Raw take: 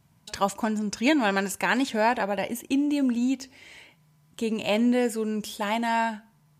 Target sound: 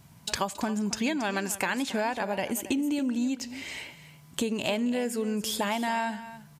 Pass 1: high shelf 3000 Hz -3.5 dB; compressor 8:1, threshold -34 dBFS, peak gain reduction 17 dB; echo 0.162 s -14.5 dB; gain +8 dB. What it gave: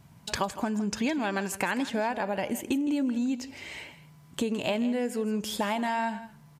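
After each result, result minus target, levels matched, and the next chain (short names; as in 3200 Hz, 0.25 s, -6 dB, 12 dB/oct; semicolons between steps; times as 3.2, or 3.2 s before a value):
echo 0.113 s early; 8000 Hz band -4.5 dB
high shelf 3000 Hz -3.5 dB; compressor 8:1, threshold -34 dBFS, peak gain reduction 17 dB; echo 0.275 s -14.5 dB; gain +8 dB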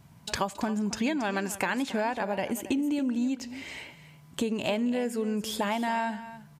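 8000 Hz band -4.5 dB
high shelf 3000 Hz +3 dB; compressor 8:1, threshold -34 dBFS, peak gain reduction 17.5 dB; echo 0.275 s -14.5 dB; gain +8 dB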